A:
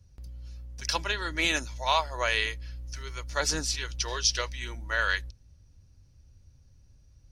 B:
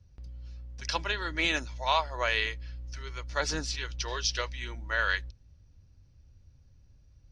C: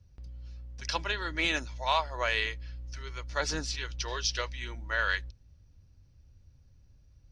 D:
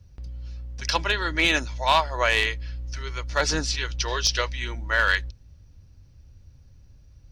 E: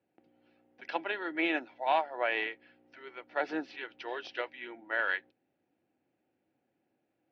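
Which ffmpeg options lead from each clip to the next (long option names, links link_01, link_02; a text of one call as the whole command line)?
ffmpeg -i in.wav -af "lowpass=4800,volume=-1dB" out.wav
ffmpeg -i in.wav -af "acontrast=89,volume=-8dB" out.wav
ffmpeg -i in.wav -af "aeval=exprs='clip(val(0),-1,0.0891)':channel_layout=same,volume=8dB" out.wav
ffmpeg -i in.wav -af "aeval=exprs='0.473*(cos(1*acos(clip(val(0)/0.473,-1,1)))-cos(1*PI/2))+0.0106*(cos(7*acos(clip(val(0)/0.473,-1,1)))-cos(7*PI/2))':channel_layout=same,highpass=frequency=250:width=0.5412,highpass=frequency=250:width=1.3066,equalizer=frequency=330:width_type=q:width=4:gain=7,equalizer=frequency=750:width_type=q:width=4:gain=10,equalizer=frequency=1100:width_type=q:width=4:gain=-8,lowpass=frequency=2700:width=0.5412,lowpass=frequency=2700:width=1.3066,volume=-8.5dB" out.wav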